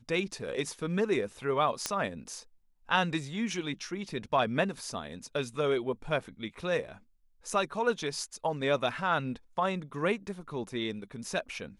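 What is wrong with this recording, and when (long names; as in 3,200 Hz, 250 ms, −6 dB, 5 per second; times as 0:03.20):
0:01.86: click −13 dBFS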